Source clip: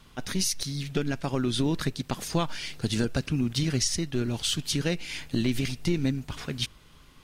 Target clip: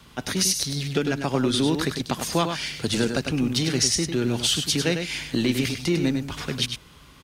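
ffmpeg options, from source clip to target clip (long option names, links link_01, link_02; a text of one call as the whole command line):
ffmpeg -i in.wav -filter_complex "[0:a]highpass=50,acrossover=split=210|1500|3900[link_01][link_02][link_03][link_04];[link_01]asoftclip=type=tanh:threshold=-36.5dB[link_05];[link_05][link_02][link_03][link_04]amix=inputs=4:normalize=0,aecho=1:1:100:0.447,volume=5.5dB" out.wav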